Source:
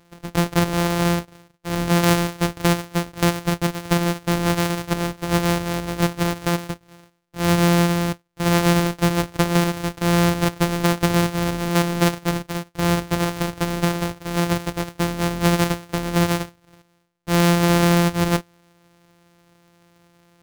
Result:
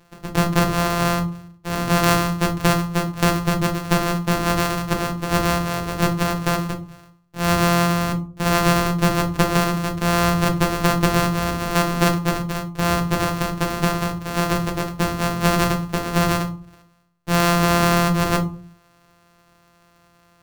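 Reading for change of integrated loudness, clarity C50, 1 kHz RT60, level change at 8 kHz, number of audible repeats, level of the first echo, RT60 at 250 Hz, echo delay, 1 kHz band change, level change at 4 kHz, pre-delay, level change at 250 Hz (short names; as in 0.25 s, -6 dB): +0.5 dB, 13.5 dB, 0.40 s, +0.5 dB, none, none, 0.60 s, none, +3.5 dB, +0.5 dB, 5 ms, -1.0 dB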